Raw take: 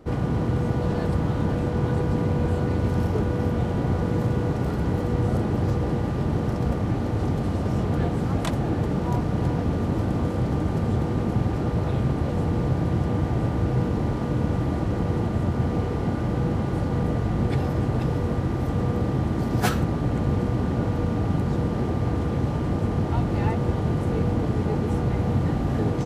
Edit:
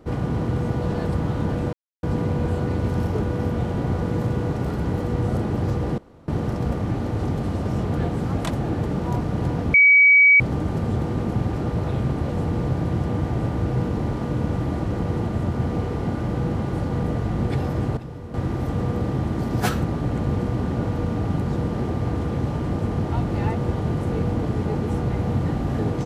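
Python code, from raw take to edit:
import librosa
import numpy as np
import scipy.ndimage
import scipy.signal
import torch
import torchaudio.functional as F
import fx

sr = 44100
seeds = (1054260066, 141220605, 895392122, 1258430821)

y = fx.edit(x, sr, fx.silence(start_s=1.73, length_s=0.3),
    fx.room_tone_fill(start_s=5.98, length_s=0.3),
    fx.bleep(start_s=9.74, length_s=0.66, hz=2270.0, db=-9.5),
    fx.clip_gain(start_s=17.97, length_s=0.37, db=-11.0), tone=tone)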